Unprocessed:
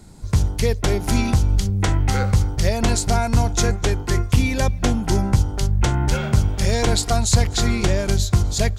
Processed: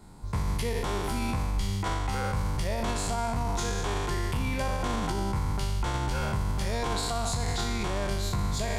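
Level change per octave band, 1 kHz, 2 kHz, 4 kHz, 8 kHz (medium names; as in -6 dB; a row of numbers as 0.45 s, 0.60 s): -4.5 dB, -7.5 dB, -8.5 dB, -11.5 dB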